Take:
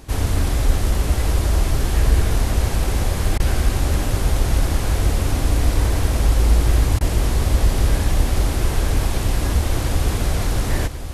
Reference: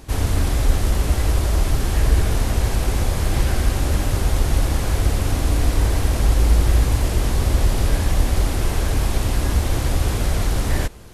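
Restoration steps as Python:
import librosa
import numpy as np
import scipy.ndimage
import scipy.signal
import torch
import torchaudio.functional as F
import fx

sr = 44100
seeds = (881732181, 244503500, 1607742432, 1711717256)

y = fx.fix_interpolate(x, sr, at_s=(3.38, 6.99), length_ms=17.0)
y = fx.fix_echo_inverse(y, sr, delay_ms=1090, level_db=-10.5)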